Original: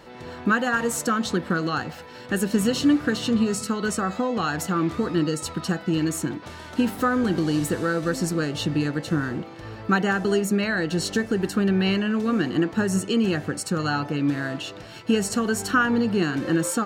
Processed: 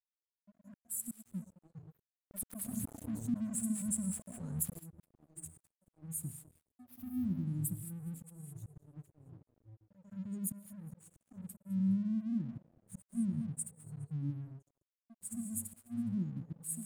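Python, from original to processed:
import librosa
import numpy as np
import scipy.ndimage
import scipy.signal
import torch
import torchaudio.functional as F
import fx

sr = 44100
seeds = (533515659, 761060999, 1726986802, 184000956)

y = fx.bin_expand(x, sr, power=2.0)
y = scipy.signal.sosfilt(scipy.signal.butter(4, 100.0, 'highpass', fs=sr, output='sos'), y)
y = fx.rev_gated(y, sr, seeds[0], gate_ms=240, shape='rising', drr_db=10.0)
y = fx.dynamic_eq(y, sr, hz=390.0, q=1.1, threshold_db=-34.0, ratio=4.0, max_db=-6)
y = fx.auto_swell(y, sr, attack_ms=349.0)
y = fx.env_flanger(y, sr, rest_ms=3.9, full_db=-24.0)
y = scipy.signal.sosfilt(scipy.signal.cheby2(4, 40, [450.0, 5400.0], 'bandstop', fs=sr, output='sos'), y)
y = fx.high_shelf_res(y, sr, hz=5800.0, db=6.5, q=1.5)
y = fx.echo_feedback(y, sr, ms=207, feedback_pct=30, wet_db=-19.5)
y = np.sign(y) * np.maximum(np.abs(y) - 10.0 ** (-59.0 / 20.0), 0.0)
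y = fx.env_flatten(y, sr, amount_pct=50, at=(2.13, 4.78), fade=0.02)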